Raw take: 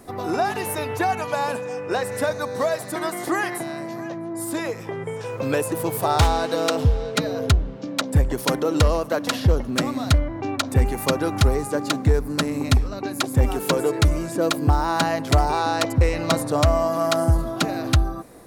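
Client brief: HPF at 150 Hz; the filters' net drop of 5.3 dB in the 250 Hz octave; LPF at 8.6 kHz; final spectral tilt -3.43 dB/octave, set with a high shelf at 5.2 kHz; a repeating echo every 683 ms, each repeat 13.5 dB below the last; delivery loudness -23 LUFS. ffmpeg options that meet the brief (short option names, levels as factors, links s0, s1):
-af "highpass=150,lowpass=8600,equalizer=f=250:t=o:g=-6.5,highshelf=f=5200:g=7,aecho=1:1:683|1366:0.211|0.0444,volume=1.26"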